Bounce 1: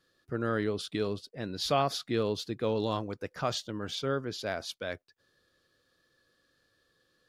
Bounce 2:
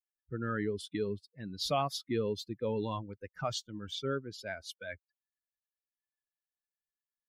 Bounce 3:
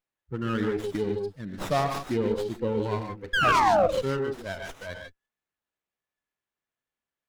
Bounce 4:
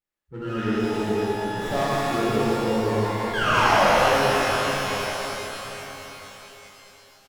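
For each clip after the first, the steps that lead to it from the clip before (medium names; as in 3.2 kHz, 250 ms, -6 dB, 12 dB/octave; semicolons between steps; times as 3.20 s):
expander on every frequency bin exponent 2; in parallel at -1 dB: peak limiter -27 dBFS, peak gain reduction 9.5 dB; on the sum: trim -4 dB
painted sound fall, 3.33–3.87 s, 490–1700 Hz -26 dBFS; gated-style reverb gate 170 ms rising, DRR 4 dB; sliding maximum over 9 samples; trim +5 dB
delay 1131 ms -18 dB; pitch-shifted reverb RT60 3.9 s, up +12 st, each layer -8 dB, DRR -10.5 dB; trim -7 dB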